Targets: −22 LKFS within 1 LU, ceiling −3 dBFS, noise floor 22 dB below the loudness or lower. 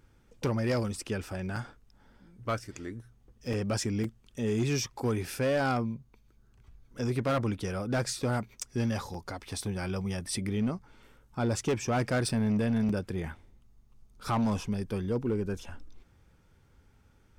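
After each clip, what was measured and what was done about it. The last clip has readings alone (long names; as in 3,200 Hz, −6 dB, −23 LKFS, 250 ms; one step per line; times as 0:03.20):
share of clipped samples 1.7%; peaks flattened at −23.0 dBFS; number of dropouts 6; longest dropout 3.8 ms; integrated loudness −32.0 LKFS; sample peak −23.0 dBFS; target loudness −22.0 LKFS
→ clipped peaks rebuilt −23 dBFS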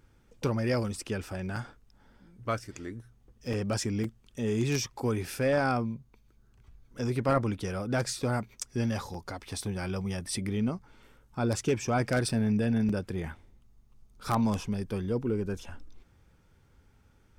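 share of clipped samples 0.0%; number of dropouts 6; longest dropout 3.8 ms
→ repair the gap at 0:01.56/0:03.53/0:04.04/0:09.14/0:12.29/0:12.89, 3.8 ms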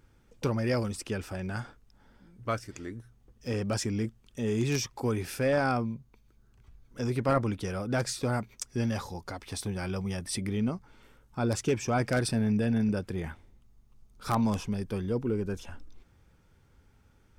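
number of dropouts 0; integrated loudness −31.0 LKFS; sample peak −14.0 dBFS; target loudness −22.0 LKFS
→ level +9 dB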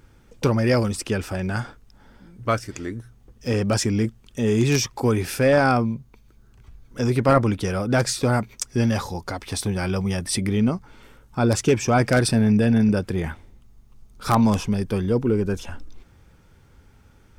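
integrated loudness −22.0 LKFS; sample peak −5.0 dBFS; background noise floor −54 dBFS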